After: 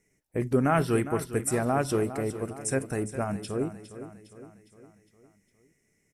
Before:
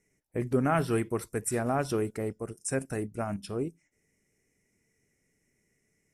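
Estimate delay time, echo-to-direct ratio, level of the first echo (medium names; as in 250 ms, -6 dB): 408 ms, -11.0 dB, -12.5 dB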